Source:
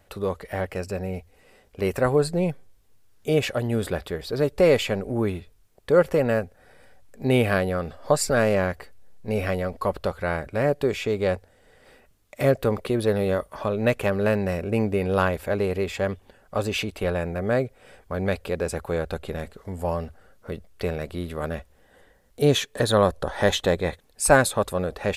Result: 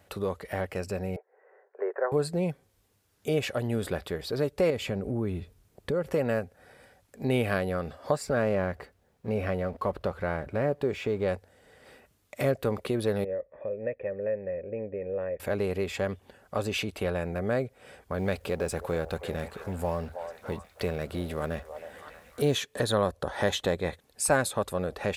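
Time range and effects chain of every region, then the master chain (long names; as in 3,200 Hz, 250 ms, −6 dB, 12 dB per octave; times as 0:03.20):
0:01.16–0:02.12: Chebyshev band-pass filter 390–1,800 Hz, order 4 + notch filter 1,200 Hz, Q 9.4
0:04.70–0:06.11: low-shelf EQ 450 Hz +8.5 dB + downward compressor 2 to 1, threshold −28 dBFS
0:08.16–0:11.28: mu-law and A-law mismatch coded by mu + high-shelf EQ 3,100 Hz −11 dB
0:13.24–0:15.40: formant resonators in series e + spectral tilt −1.5 dB per octave
0:18.18–0:22.55: mu-law and A-law mismatch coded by mu + echo through a band-pass that steps 318 ms, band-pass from 690 Hz, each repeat 0.7 octaves, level −9.5 dB
whole clip: high-pass filter 63 Hz; downward compressor 1.5 to 1, threshold −33 dBFS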